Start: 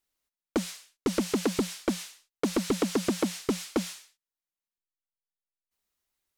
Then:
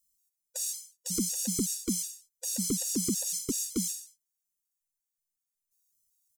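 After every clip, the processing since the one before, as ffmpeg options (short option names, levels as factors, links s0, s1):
-af "firequalizer=gain_entry='entry(200,0);entry(700,-21);entry(6300,13)':delay=0.05:min_phase=1,afftfilt=real='re*gt(sin(2*PI*2.7*pts/sr)*(1-2*mod(floor(b*sr/1024/490),2)),0)':imag='im*gt(sin(2*PI*2.7*pts/sr)*(1-2*mod(floor(b*sr/1024/490),2)),0)':win_size=1024:overlap=0.75"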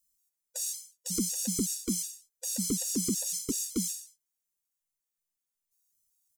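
-af "flanger=delay=3.7:depth=1:regen=-76:speed=0.81:shape=sinusoidal,volume=1.58"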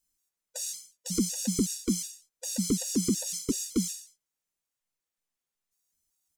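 -af "highshelf=f=7200:g=-11,volume=1.68"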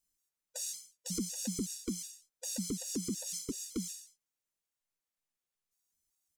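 -af "alimiter=limit=0.075:level=0:latency=1:release=285,volume=0.631"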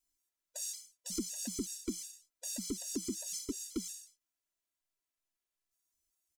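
-af "aecho=1:1:3:0.75,volume=0.708"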